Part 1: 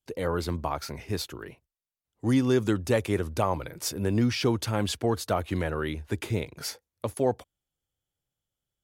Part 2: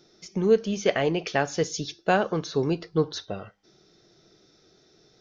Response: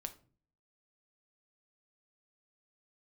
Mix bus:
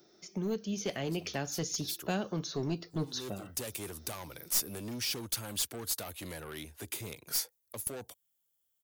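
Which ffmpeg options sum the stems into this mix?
-filter_complex "[0:a]asoftclip=type=tanh:threshold=0.0562,adelay=700,volume=0.668[s0];[1:a]bandreject=f=470:w=12,dynaudnorm=f=140:g=11:m=1.58,equalizer=f=5900:w=0.32:g=-12,volume=1,asplit=2[s1][s2];[s2]apad=whole_len=420435[s3];[s0][s3]sidechaincompress=threshold=0.0158:ratio=8:attack=16:release=198[s4];[s4][s1]amix=inputs=2:normalize=0,aemphasis=mode=production:type=bsi,acrossover=split=240|3000[s5][s6][s7];[s6]acompressor=threshold=0.00355:ratio=2[s8];[s5][s8][s7]amix=inputs=3:normalize=0,aeval=exprs='clip(val(0),-1,0.0398)':c=same"

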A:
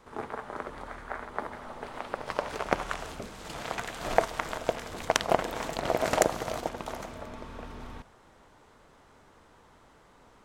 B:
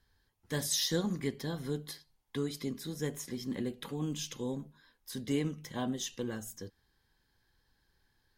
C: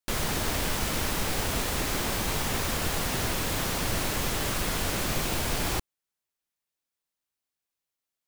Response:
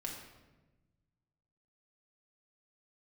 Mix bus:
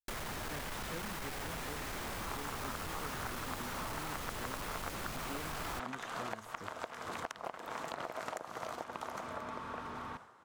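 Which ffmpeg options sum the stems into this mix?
-filter_complex "[0:a]highpass=100,equalizer=f=1200:t=o:w=1.1:g=9.5,acompressor=threshold=0.0224:ratio=6,adelay=2150,volume=0.794[s0];[1:a]acrossover=split=2700[s1][s2];[s2]acompressor=threshold=0.00251:ratio=4:attack=1:release=60[s3];[s1][s3]amix=inputs=2:normalize=0,volume=0.473[s4];[2:a]asoftclip=type=tanh:threshold=0.0398,volume=0.668[s5];[s0][s4][s5]amix=inputs=3:normalize=0,agate=range=0.0224:threshold=0.00355:ratio=3:detection=peak,acrossover=split=730|2200[s6][s7][s8];[s6]acompressor=threshold=0.00708:ratio=4[s9];[s7]acompressor=threshold=0.00891:ratio=4[s10];[s8]acompressor=threshold=0.00447:ratio=4[s11];[s9][s10][s11]amix=inputs=3:normalize=0"

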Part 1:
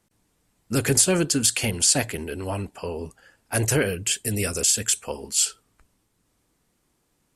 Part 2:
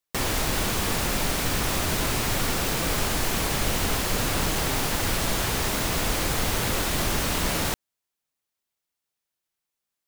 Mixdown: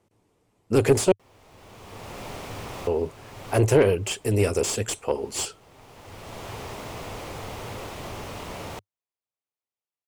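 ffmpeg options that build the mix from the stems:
-filter_complex "[0:a]aeval=exprs='0.473*(cos(1*acos(clip(val(0)/0.473,-1,1)))-cos(1*PI/2))+0.0668*(cos(6*acos(clip(val(0)/0.473,-1,1)))-cos(6*PI/2))+0.015*(cos(8*acos(clip(val(0)/0.473,-1,1)))-cos(8*PI/2))':c=same,volume=0.841,asplit=3[s0][s1][s2];[s0]atrim=end=1.12,asetpts=PTS-STARTPTS,afade=t=out:st=1.116:d=0.004:c=hsin[s3];[s1]atrim=start=1.12:end=2.87,asetpts=PTS-STARTPTS,volume=0[s4];[s2]atrim=start=2.87,asetpts=PTS-STARTPTS,afade=t=in:d=0.004:c=hsin[s5];[s3][s4][s5]concat=n=3:v=0:a=1,asplit=2[s6][s7];[1:a]equalizer=f=360:w=1.7:g=-5,adelay=1050,volume=0.251[s8];[s7]apad=whole_len=490424[s9];[s8][s9]sidechaincompress=threshold=0.00891:ratio=12:attack=49:release=689[s10];[s6][s10]amix=inputs=2:normalize=0,equalizer=f=100:t=o:w=0.67:g=11,equalizer=f=400:t=o:w=0.67:g=6,equalizer=f=1600:t=o:w=0.67:g=-8,equalizer=f=4000:t=o:w=0.67:g=-3,asplit=2[s11][s12];[s12]highpass=f=720:p=1,volume=5.62,asoftclip=type=tanh:threshold=0.562[s13];[s11][s13]amix=inputs=2:normalize=0,lowpass=f=1300:p=1,volume=0.501"

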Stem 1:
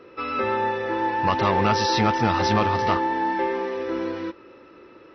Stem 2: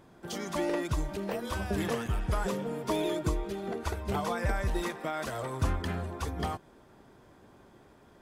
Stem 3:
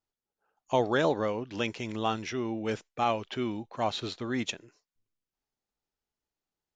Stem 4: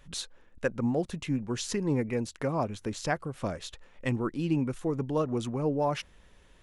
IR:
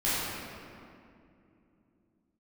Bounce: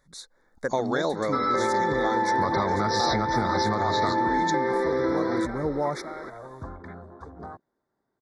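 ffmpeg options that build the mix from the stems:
-filter_complex "[0:a]acrossover=split=160[s0][s1];[s1]acompressor=threshold=0.0794:ratio=6[s2];[s0][s2]amix=inputs=2:normalize=0,adelay=1150,volume=1[s3];[1:a]afwtdn=0.0112,lowpass=6000,adelay=1000,volume=0.211[s4];[2:a]equalizer=f=4600:t=o:w=1.1:g=6.5,volume=0.631[s5];[3:a]volume=0.501[s6];[s3][s5][s6]amix=inputs=3:normalize=0,acompressor=threshold=0.0316:ratio=4,volume=1[s7];[s4][s7]amix=inputs=2:normalize=0,lowshelf=f=120:g=-10,dynaudnorm=f=190:g=5:m=2.82,asuperstop=centerf=2800:order=12:qfactor=2.2"

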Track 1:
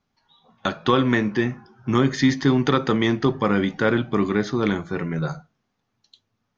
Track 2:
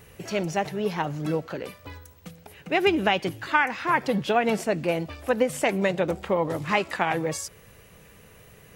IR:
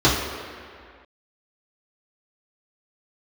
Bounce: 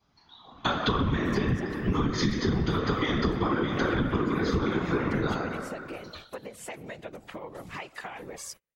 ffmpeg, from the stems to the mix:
-filter_complex "[0:a]acompressor=threshold=0.0794:ratio=6,equalizer=f=390:w=1.5:g=-5,volume=1,asplit=2[s0][s1];[s1]volume=0.447[s2];[1:a]agate=range=0.0158:threshold=0.0112:ratio=16:detection=peak,acompressor=threshold=0.0355:ratio=16,adelay=1050,volume=1.26[s3];[2:a]atrim=start_sample=2205[s4];[s2][s4]afir=irnorm=-1:irlink=0[s5];[s0][s3][s5]amix=inputs=3:normalize=0,lowshelf=f=410:g=-6.5,afftfilt=real='hypot(re,im)*cos(2*PI*random(0))':imag='hypot(re,im)*sin(2*PI*random(1))':win_size=512:overlap=0.75,acompressor=threshold=0.0708:ratio=6"

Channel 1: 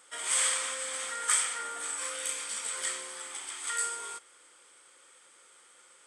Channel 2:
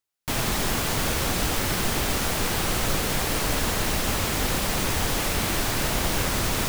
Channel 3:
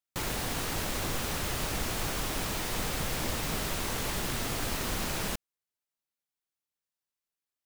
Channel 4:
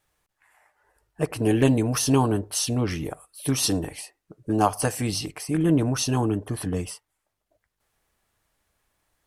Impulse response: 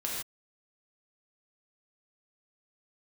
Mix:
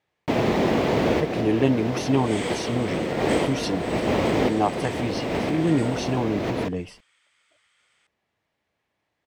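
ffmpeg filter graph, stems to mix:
-filter_complex "[0:a]highpass=1400,adelay=2000,volume=0.944[s0];[1:a]highpass=73,equalizer=f=400:w=0.42:g=14.5,volume=0.596,asplit=2[s1][s2];[s2]volume=0.224[s3];[2:a]alimiter=level_in=1.58:limit=0.0631:level=0:latency=1:release=242,volume=0.631,adelay=1650,volume=0.168[s4];[3:a]highpass=120,volume=0.944,asplit=2[s5][s6];[s6]apad=whole_len=294708[s7];[s1][s7]sidechaincompress=threshold=0.0112:ratio=8:attack=16:release=136[s8];[4:a]atrim=start_sample=2205[s9];[s3][s9]afir=irnorm=-1:irlink=0[s10];[s0][s8][s4][s5][s10]amix=inputs=5:normalize=0,firequalizer=gain_entry='entry(660,0);entry(1400,-6);entry(2000,1);entry(10000,-21)':delay=0.05:min_phase=1"

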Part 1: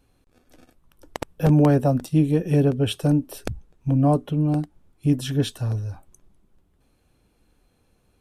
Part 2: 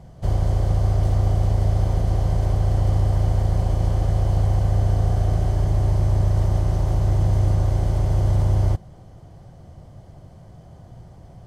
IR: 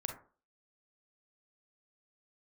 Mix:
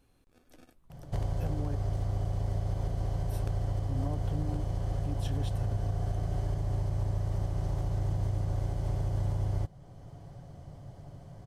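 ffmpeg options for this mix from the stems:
-filter_complex "[0:a]alimiter=limit=0.112:level=0:latency=1:release=195,volume=0.631,asplit=3[s0][s1][s2];[s0]atrim=end=1.76,asetpts=PTS-STARTPTS,afade=t=out:st=1.756:d=0.004:c=hsin[s3];[s1]atrim=start=1.76:end=3.23,asetpts=PTS-STARTPTS,volume=0[s4];[s2]atrim=start=3.23,asetpts=PTS-STARTPTS,afade=t=in:d=0.004:c=hsin[s5];[s3][s4][s5]concat=n=3:v=0:a=1[s6];[1:a]aecho=1:1:7.1:0.31,adelay=900,volume=0.631[s7];[s6][s7]amix=inputs=2:normalize=0,alimiter=limit=0.075:level=0:latency=1:release=408"

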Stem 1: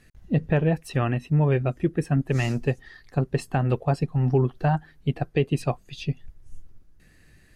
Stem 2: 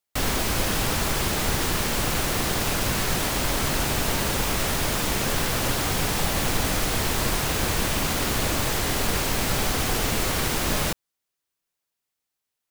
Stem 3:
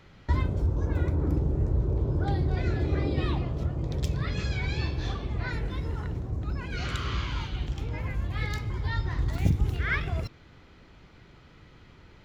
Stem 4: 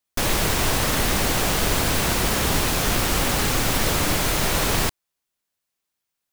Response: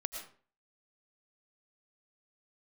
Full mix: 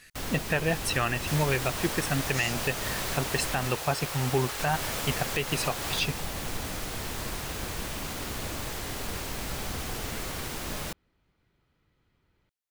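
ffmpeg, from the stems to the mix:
-filter_complex "[0:a]tiltshelf=f=790:g=-9.5,volume=1.19[s0];[1:a]volume=0.299,asplit=3[s1][s2][s3];[s1]atrim=end=3.68,asetpts=PTS-STARTPTS,afade=t=out:st=3.676:d=0.004:c=hsin[s4];[s2]atrim=start=3.68:end=4.59,asetpts=PTS-STARTPTS,volume=0[s5];[s3]atrim=start=4.59,asetpts=PTS-STARTPTS,afade=t=in:d=0.004:c=hsin[s6];[s4][s5][s6]concat=n=3:v=0:a=1[s7];[2:a]adelay=250,volume=0.112[s8];[3:a]highpass=f=440:w=0.5412,highpass=f=440:w=1.3066,adelay=1100,volume=0.266[s9];[s0][s7][s8][s9]amix=inputs=4:normalize=0,alimiter=limit=0.178:level=0:latency=1:release=192"

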